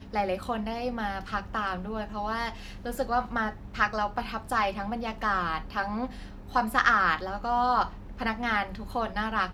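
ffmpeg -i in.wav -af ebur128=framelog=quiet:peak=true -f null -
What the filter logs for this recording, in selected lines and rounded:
Integrated loudness:
  I:         -29.1 LUFS
  Threshold: -39.2 LUFS
Loudness range:
  LRA:         4.7 LU
  Threshold: -48.9 LUFS
  LRA low:   -31.8 LUFS
  LRA high:  -27.1 LUFS
True peak:
  Peak:       -7.8 dBFS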